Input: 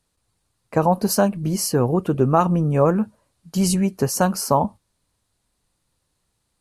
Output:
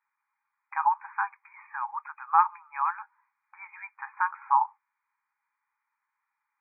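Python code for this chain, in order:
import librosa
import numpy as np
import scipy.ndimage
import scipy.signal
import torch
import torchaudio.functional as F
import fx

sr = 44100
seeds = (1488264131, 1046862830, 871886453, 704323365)

y = fx.brickwall_bandpass(x, sr, low_hz=800.0, high_hz=2500.0)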